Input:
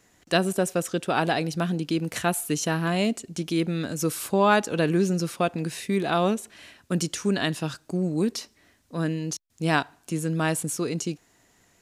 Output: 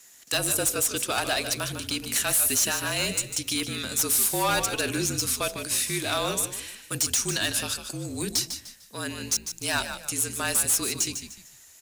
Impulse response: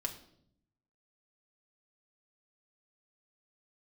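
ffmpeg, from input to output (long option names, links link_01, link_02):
-filter_complex "[0:a]bass=frequency=250:gain=-6,treble=frequency=4000:gain=0,bandreject=frequency=53.76:width_type=h:width=4,bandreject=frequency=107.52:width_type=h:width=4,bandreject=frequency=161.28:width_type=h:width=4,bandreject=frequency=215.04:width_type=h:width=4,bandreject=frequency=268.8:width_type=h:width=4,bandreject=frequency=322.56:width_type=h:width=4,bandreject=frequency=376.32:width_type=h:width=4,bandreject=frequency=430.08:width_type=h:width=4,bandreject=frequency=483.84:width_type=h:width=4,bandreject=frequency=537.6:width_type=h:width=4,bandreject=frequency=591.36:width_type=h:width=4,bandreject=frequency=645.12:width_type=h:width=4,bandreject=frequency=698.88:width_type=h:width=4,bandreject=frequency=752.64:width_type=h:width=4,crystalizer=i=9:c=0,volume=14dB,asoftclip=hard,volume=-14dB,afreqshift=-41,asplit=5[link_01][link_02][link_03][link_04][link_05];[link_02]adelay=150,afreqshift=-54,volume=-9dB[link_06];[link_03]adelay=300,afreqshift=-108,volume=-18.9dB[link_07];[link_04]adelay=450,afreqshift=-162,volume=-28.8dB[link_08];[link_05]adelay=600,afreqshift=-216,volume=-38.7dB[link_09];[link_01][link_06][link_07][link_08][link_09]amix=inputs=5:normalize=0,volume=-6dB"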